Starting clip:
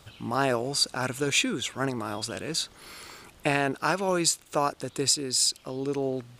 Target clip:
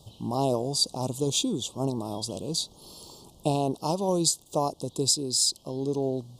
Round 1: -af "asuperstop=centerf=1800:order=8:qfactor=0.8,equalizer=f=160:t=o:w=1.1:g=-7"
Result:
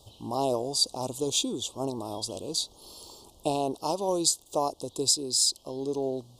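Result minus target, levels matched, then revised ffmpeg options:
125 Hz band -8.0 dB
-af "asuperstop=centerf=1800:order=8:qfactor=0.8,equalizer=f=160:t=o:w=1.1:g=4"

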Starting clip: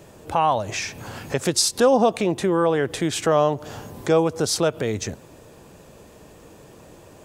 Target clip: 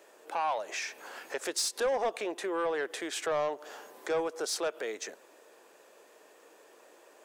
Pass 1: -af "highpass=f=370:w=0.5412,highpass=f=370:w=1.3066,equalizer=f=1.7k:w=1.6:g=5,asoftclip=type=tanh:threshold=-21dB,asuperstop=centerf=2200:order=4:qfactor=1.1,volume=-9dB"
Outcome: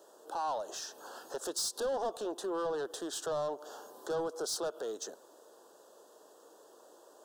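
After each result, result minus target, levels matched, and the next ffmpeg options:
2000 Hz band -8.0 dB; soft clip: distortion +6 dB
-af "highpass=f=370:w=0.5412,highpass=f=370:w=1.3066,equalizer=f=1.7k:w=1.6:g=5,asoftclip=type=tanh:threshold=-21dB,volume=-9dB"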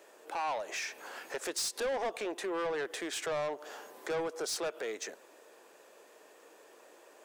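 soft clip: distortion +6 dB
-af "highpass=f=370:w=0.5412,highpass=f=370:w=1.3066,equalizer=f=1.7k:w=1.6:g=5,asoftclip=type=tanh:threshold=-14.5dB,volume=-9dB"

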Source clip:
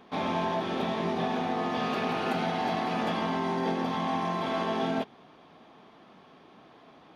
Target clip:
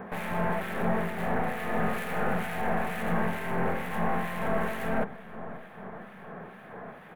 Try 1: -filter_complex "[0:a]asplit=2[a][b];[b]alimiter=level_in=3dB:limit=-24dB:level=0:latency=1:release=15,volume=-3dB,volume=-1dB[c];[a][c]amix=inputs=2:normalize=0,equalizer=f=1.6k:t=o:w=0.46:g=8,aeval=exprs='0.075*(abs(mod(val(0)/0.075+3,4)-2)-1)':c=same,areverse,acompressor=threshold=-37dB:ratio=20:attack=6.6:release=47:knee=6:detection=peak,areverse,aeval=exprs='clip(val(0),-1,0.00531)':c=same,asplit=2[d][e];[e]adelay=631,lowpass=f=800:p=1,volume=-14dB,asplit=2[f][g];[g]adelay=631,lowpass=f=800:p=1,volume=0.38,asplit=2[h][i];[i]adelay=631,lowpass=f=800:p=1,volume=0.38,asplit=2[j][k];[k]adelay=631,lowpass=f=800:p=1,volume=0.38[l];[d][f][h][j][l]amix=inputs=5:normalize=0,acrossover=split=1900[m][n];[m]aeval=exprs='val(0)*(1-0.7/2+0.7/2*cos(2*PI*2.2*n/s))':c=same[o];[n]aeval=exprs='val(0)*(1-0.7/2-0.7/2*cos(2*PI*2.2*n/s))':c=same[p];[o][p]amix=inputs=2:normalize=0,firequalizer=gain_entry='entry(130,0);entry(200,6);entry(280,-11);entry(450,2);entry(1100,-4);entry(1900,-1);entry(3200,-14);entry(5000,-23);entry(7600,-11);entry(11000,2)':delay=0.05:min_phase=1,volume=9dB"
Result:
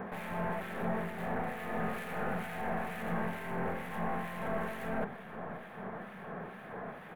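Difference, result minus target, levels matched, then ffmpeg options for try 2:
compressor: peak gain reduction +8 dB
-filter_complex "[0:a]asplit=2[a][b];[b]alimiter=level_in=3dB:limit=-24dB:level=0:latency=1:release=15,volume=-3dB,volume=-1dB[c];[a][c]amix=inputs=2:normalize=0,equalizer=f=1.6k:t=o:w=0.46:g=8,aeval=exprs='0.075*(abs(mod(val(0)/0.075+3,4)-2)-1)':c=same,areverse,acompressor=threshold=-28dB:ratio=20:attack=6.6:release=47:knee=6:detection=peak,areverse,aeval=exprs='clip(val(0),-1,0.00531)':c=same,asplit=2[d][e];[e]adelay=631,lowpass=f=800:p=1,volume=-14dB,asplit=2[f][g];[g]adelay=631,lowpass=f=800:p=1,volume=0.38,asplit=2[h][i];[i]adelay=631,lowpass=f=800:p=1,volume=0.38,asplit=2[j][k];[k]adelay=631,lowpass=f=800:p=1,volume=0.38[l];[d][f][h][j][l]amix=inputs=5:normalize=0,acrossover=split=1900[m][n];[m]aeval=exprs='val(0)*(1-0.7/2+0.7/2*cos(2*PI*2.2*n/s))':c=same[o];[n]aeval=exprs='val(0)*(1-0.7/2-0.7/2*cos(2*PI*2.2*n/s))':c=same[p];[o][p]amix=inputs=2:normalize=0,firequalizer=gain_entry='entry(130,0);entry(200,6);entry(280,-11);entry(450,2);entry(1100,-4);entry(1900,-1);entry(3200,-14);entry(5000,-23);entry(7600,-11);entry(11000,2)':delay=0.05:min_phase=1,volume=9dB"

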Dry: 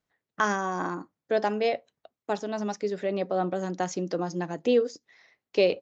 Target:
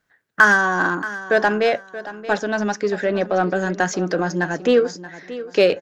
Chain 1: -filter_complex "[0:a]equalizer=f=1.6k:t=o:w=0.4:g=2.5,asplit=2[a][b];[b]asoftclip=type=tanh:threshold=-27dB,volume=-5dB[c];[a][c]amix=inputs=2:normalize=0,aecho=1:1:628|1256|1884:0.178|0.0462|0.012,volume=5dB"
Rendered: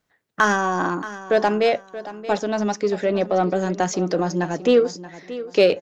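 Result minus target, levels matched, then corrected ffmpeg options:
2000 Hz band -6.5 dB
-filter_complex "[0:a]equalizer=f=1.6k:t=o:w=0.4:g=13.5,asplit=2[a][b];[b]asoftclip=type=tanh:threshold=-27dB,volume=-5dB[c];[a][c]amix=inputs=2:normalize=0,aecho=1:1:628|1256|1884:0.178|0.0462|0.012,volume=5dB"

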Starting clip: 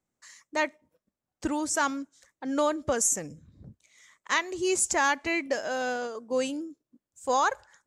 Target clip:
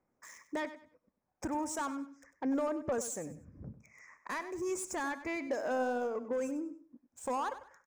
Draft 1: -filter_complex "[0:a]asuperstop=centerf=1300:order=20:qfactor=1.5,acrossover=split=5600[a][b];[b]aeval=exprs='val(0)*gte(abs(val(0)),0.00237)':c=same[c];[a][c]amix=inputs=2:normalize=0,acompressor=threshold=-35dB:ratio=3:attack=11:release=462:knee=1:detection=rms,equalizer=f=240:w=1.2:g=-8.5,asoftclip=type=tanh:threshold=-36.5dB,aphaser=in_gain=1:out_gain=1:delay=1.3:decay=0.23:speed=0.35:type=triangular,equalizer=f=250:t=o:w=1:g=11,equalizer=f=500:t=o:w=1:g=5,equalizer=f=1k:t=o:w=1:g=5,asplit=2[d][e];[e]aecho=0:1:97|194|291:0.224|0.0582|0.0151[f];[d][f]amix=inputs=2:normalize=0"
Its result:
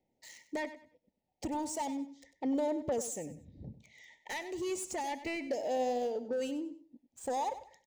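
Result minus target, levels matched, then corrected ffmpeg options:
4000 Hz band +4.5 dB
-filter_complex "[0:a]asuperstop=centerf=3600:order=20:qfactor=1.5,acrossover=split=5600[a][b];[b]aeval=exprs='val(0)*gte(abs(val(0)),0.00237)':c=same[c];[a][c]amix=inputs=2:normalize=0,acompressor=threshold=-35dB:ratio=3:attack=11:release=462:knee=1:detection=rms,equalizer=f=240:w=1.2:g=-8.5,asoftclip=type=tanh:threshold=-36.5dB,aphaser=in_gain=1:out_gain=1:delay=1.3:decay=0.23:speed=0.35:type=triangular,equalizer=f=250:t=o:w=1:g=11,equalizer=f=500:t=o:w=1:g=5,equalizer=f=1k:t=o:w=1:g=5,asplit=2[d][e];[e]aecho=0:1:97|194|291:0.224|0.0582|0.0151[f];[d][f]amix=inputs=2:normalize=0"

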